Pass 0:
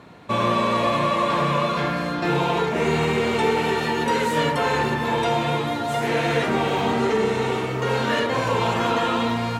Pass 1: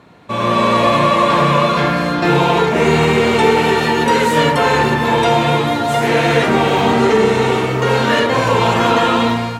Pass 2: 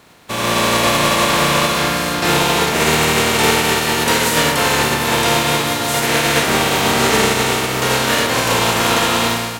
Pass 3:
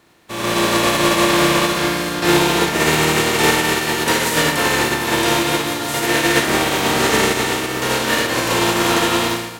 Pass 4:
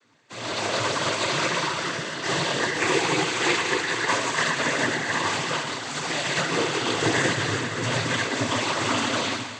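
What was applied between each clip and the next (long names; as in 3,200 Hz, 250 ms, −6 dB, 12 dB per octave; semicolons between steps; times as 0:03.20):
automatic gain control gain up to 10.5 dB
compressing power law on the bin magnitudes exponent 0.49; level −2 dB
hollow resonant body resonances 340/1,800 Hz, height 10 dB, ringing for 95 ms; on a send: flutter between parallel walls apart 9.9 metres, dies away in 0.31 s; on the sum: expander for the loud parts 1.5 to 1, over −24 dBFS; level −1 dB
stiff-string resonator 130 Hz, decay 0.23 s, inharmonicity 0.002; cochlear-implant simulation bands 16; feedback echo with a high-pass in the loop 124 ms, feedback 76%, level −15 dB; level +2.5 dB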